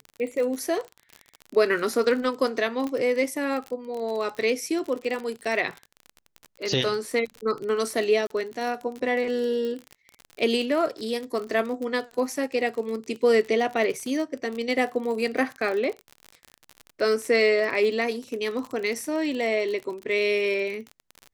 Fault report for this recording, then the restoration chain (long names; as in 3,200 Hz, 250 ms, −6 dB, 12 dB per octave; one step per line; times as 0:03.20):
surface crackle 38 per second −30 dBFS
0:02.87: click −19 dBFS
0:08.27–0:08.30: drop-out 33 ms
0:09.65: click −22 dBFS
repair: click removal
repair the gap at 0:08.27, 33 ms